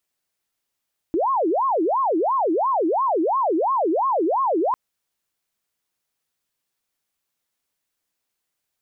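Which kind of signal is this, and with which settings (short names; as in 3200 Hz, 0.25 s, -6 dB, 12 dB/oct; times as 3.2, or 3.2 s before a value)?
siren wail 313–1090 Hz 2.9/s sine -17.5 dBFS 3.60 s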